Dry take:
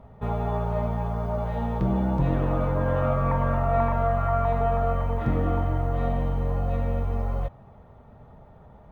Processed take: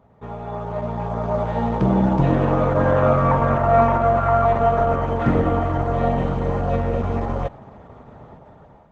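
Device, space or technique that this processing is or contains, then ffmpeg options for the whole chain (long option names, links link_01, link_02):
video call: -af "highpass=frequency=160:poles=1,dynaudnorm=framelen=420:gausssize=5:maxgain=14dB,volume=-2dB" -ar 48000 -c:a libopus -b:a 12k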